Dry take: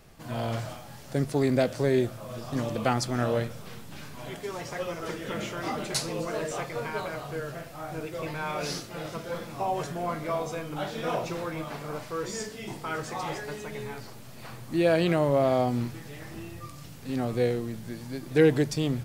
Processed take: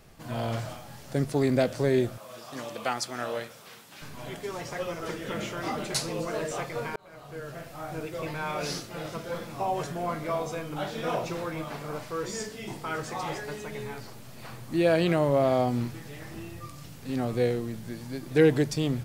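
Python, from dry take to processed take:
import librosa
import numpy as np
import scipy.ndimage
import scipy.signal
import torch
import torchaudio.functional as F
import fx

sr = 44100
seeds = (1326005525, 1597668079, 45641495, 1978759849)

y = fx.highpass(x, sr, hz=810.0, slope=6, at=(2.18, 4.02))
y = fx.edit(y, sr, fx.fade_in_span(start_s=6.96, length_s=0.76), tone=tone)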